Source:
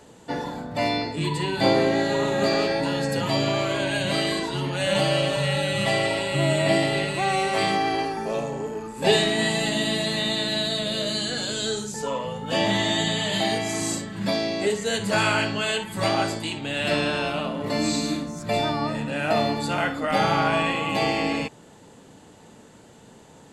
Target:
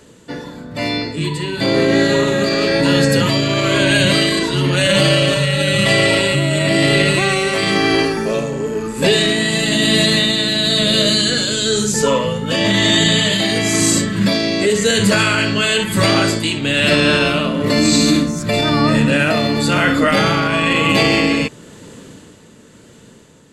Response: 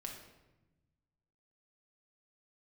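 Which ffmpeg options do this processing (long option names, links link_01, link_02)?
-af "equalizer=frequency=790:width_type=o:width=0.51:gain=-13,dynaudnorm=framelen=300:gausssize=13:maxgain=13dB,alimiter=limit=-10dB:level=0:latency=1:release=22,tremolo=f=1:d=0.38,volume=6dB"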